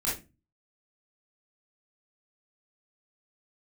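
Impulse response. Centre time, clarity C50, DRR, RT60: 38 ms, 4.0 dB, -7.0 dB, 0.25 s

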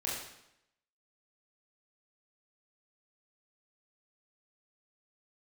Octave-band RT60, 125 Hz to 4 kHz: 0.80 s, 0.85 s, 0.80 s, 0.80 s, 0.80 s, 0.75 s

